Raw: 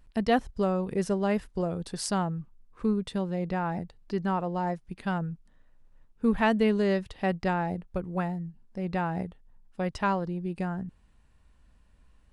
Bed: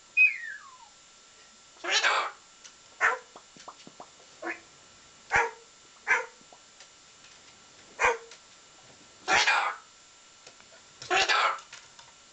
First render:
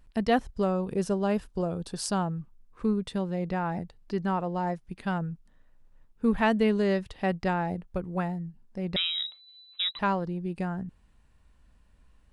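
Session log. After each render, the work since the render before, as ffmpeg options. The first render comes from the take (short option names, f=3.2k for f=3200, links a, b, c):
-filter_complex "[0:a]asettb=1/sr,asplit=3[a][b][c];[a]atrim=end=0.714[d];[b]atrim=start=0.71:end=2.27,asetpts=PTS-STARTPTS,afade=t=in:d=0.004:c=qsin,afade=t=out:st=1.556:d=0.004:c=qsin,equalizer=f=2k:t=o:w=0.27:g=-8[e];[c]atrim=start=2.266[f];[d][e]acrossfade=d=0.004:c1=hsin:c2=qsin[g];[g][f]acrossfade=d=0.004:c1=qsin:c2=hsin,asettb=1/sr,asplit=3[h][i][j];[h]atrim=end=8.964[k];[i]atrim=start=8.96:end=9.99,asetpts=PTS-STARTPTS,afade=t=in:d=0.004:c=qsin,afade=t=out:st=1.026:d=0.004:c=qsin,lowpass=f=3.4k:t=q:w=0.5098,lowpass=f=3.4k:t=q:w=0.6013,lowpass=f=3.4k:t=q:w=0.9,lowpass=f=3.4k:t=q:w=2.563,afreqshift=-4000[l];[j]atrim=start=9.986[m];[k][l]acrossfade=d=0.004:c1=hsin:c2=qsin[n];[n][m]acrossfade=d=0.004:c1=qsin:c2=hsin"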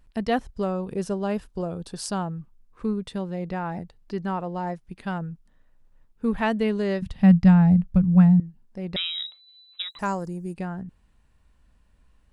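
-filter_complex "[0:a]asettb=1/sr,asplit=3[a][b][c];[a]atrim=end=7.024[d];[b]atrim=start=7.02:end=8.4,asetpts=PTS-STARTPTS,afade=t=in:d=0.004:c=qsin,afade=t=out:st=1.376:d=0.004:c=qsin,lowshelf=f=260:t=q:w=3:g=10.5[e];[c]atrim=start=8.396[f];[d][e]acrossfade=d=0.004:c1=hsin:c2=qsin[g];[g][f]acrossfade=d=0.004:c1=qsin:c2=hsin,asettb=1/sr,asplit=3[h][i][j];[h]atrim=end=9.824[k];[i]atrim=start=9.82:end=10.54,asetpts=PTS-STARTPTS,afade=t=in:d=0.004:c=qsin,afade=t=out:st=0.716:d=0.004:c=qsin,highshelf=f=5.1k:t=q:w=3:g=13.5[l];[j]atrim=start=10.536[m];[k][l]acrossfade=d=0.004:c1=hsin:c2=qsin[n];[n][m]acrossfade=d=0.004:c1=qsin:c2=hsin"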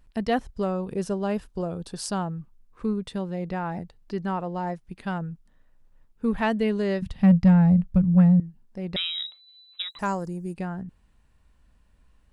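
-af "asoftclip=type=tanh:threshold=-9dB"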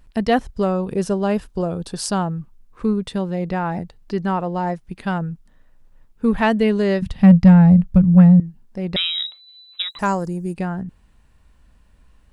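-af "volume=7dB"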